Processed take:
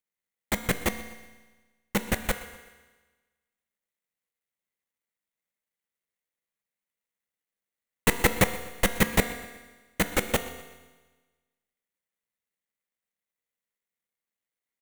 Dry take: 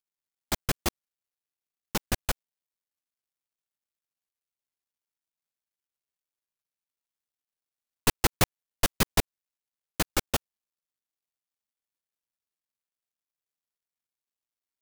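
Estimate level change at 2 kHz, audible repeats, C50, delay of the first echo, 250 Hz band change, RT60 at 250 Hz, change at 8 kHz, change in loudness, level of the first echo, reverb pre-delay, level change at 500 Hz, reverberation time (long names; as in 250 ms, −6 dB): +5.5 dB, 2, 10.5 dB, 123 ms, +4.5 dB, 1.3 s, −0.5 dB, +2.0 dB, −19.0 dB, 4 ms, +5.0 dB, 1.3 s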